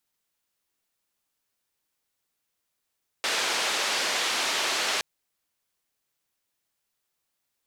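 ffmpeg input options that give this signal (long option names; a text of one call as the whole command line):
ffmpeg -f lavfi -i "anoisesrc=color=white:duration=1.77:sample_rate=44100:seed=1,highpass=frequency=400,lowpass=frequency=4800,volume=-15.5dB" out.wav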